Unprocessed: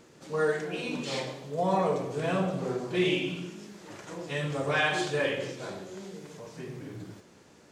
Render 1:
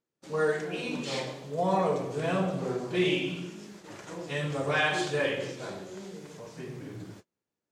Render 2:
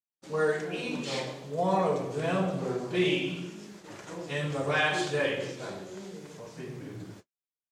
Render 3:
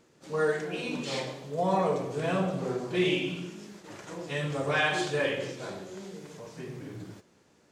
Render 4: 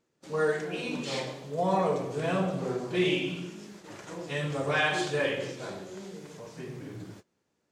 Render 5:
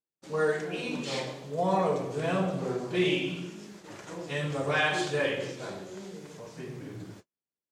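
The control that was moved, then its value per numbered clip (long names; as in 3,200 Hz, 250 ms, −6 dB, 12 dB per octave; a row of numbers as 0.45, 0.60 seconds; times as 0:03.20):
noise gate, range: −33, −58, −7, −21, −46 decibels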